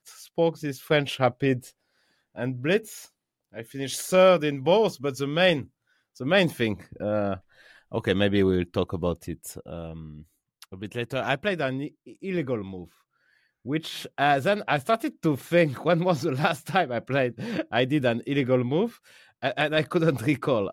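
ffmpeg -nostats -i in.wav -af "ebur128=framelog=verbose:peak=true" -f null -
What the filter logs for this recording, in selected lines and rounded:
Integrated loudness:
  I:         -25.4 LUFS
  Threshold: -36.4 LUFS
Loudness range:
  LRA:         7.4 LU
  Threshold: -46.5 LUFS
  LRA low:   -31.2 LUFS
  LRA high:  -23.9 LUFS
True peak:
  Peak:       -8.2 dBFS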